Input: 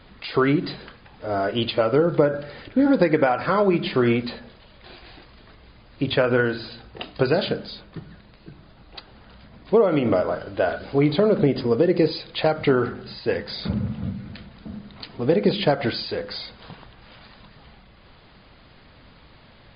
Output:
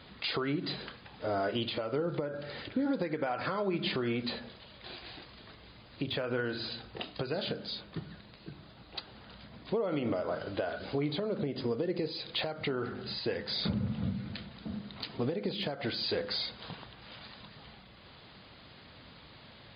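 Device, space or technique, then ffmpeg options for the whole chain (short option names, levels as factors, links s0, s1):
broadcast voice chain: -af "highpass=73,deesser=0.8,acompressor=threshold=0.0562:ratio=3,equalizer=f=3800:t=o:w=0.91:g=5,alimiter=limit=0.119:level=0:latency=1:release=375,volume=0.708"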